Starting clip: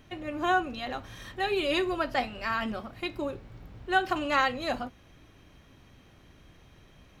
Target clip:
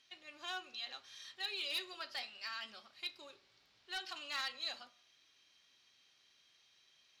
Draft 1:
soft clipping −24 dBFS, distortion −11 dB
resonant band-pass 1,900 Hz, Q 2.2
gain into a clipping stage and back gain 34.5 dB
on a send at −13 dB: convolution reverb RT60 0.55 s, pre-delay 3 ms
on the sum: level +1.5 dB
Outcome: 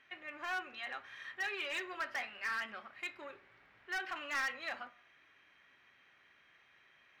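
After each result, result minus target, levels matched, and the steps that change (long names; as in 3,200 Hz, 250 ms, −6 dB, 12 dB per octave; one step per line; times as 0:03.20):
4,000 Hz band −9.0 dB; soft clipping: distortion +8 dB
change: resonant band-pass 4,600 Hz, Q 2.2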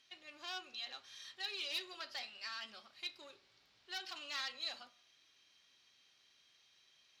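soft clipping: distortion +8 dB
change: soft clipping −16.5 dBFS, distortion −19 dB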